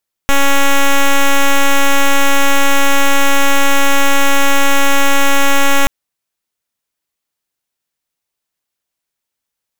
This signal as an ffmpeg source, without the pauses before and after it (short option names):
-f lavfi -i "aevalsrc='0.398*(2*lt(mod(278*t,1),0.06)-1)':d=5.58:s=44100"